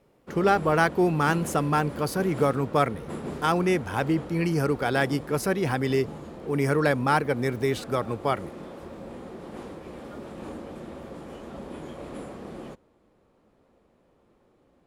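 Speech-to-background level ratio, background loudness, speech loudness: 14.0 dB, -39.5 LUFS, -25.5 LUFS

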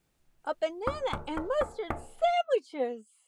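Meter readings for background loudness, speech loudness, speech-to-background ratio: -39.5 LUFS, -32.0 LUFS, 7.5 dB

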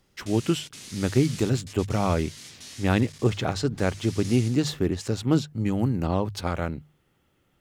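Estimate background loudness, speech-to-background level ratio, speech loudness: -42.0 LUFS, 16.0 dB, -26.0 LUFS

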